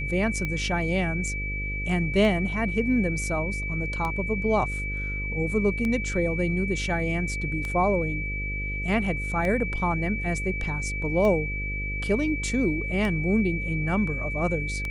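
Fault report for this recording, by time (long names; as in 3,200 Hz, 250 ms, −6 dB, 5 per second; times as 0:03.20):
mains buzz 50 Hz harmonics 11 −32 dBFS
scratch tick 33 1/3 rpm −17 dBFS
whistle 2,300 Hz −31 dBFS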